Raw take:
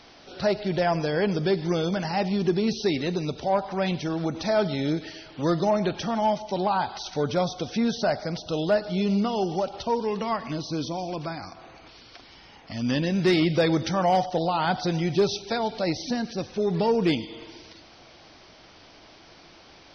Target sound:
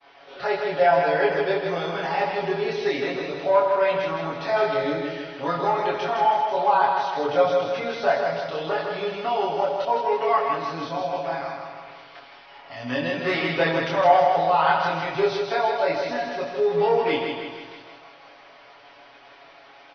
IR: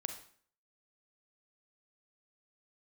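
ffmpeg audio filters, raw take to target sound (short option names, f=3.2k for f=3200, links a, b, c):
-filter_complex "[0:a]acrossover=split=450 3100:gain=0.126 1 0.0891[a][b][c];[a][b][c]amix=inputs=3:normalize=0,aecho=1:1:7.2:0.95,aecho=1:1:159|318|477|636|795|954|1113:0.562|0.298|0.158|0.0837|0.0444|0.0235|0.0125,agate=range=-33dB:threshold=-48dB:ratio=3:detection=peak,asplit=2[d][e];[1:a]atrim=start_sample=2205,adelay=24[f];[e][f]afir=irnorm=-1:irlink=0,volume=1.5dB[g];[d][g]amix=inputs=2:normalize=0"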